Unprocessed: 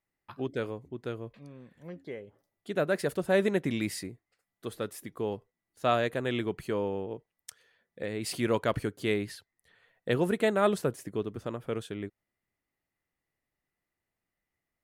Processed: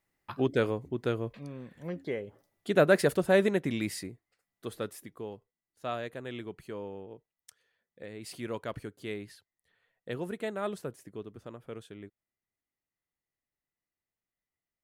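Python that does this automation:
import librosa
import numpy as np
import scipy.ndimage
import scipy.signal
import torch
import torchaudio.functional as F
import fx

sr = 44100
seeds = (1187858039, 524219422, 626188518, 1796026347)

y = fx.gain(x, sr, db=fx.line((2.95, 6.0), (3.61, -1.0), (4.86, -1.0), (5.32, -9.0)))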